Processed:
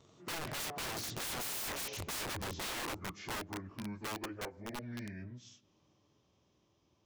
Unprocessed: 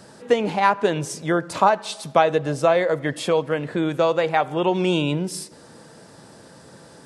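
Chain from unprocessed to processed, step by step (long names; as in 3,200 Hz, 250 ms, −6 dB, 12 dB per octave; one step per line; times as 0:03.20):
phase-vocoder pitch shift without resampling −6.5 semitones
source passing by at 0:01.52, 18 m/s, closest 2.4 metres
wrap-around overflow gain 40.5 dB
level +6 dB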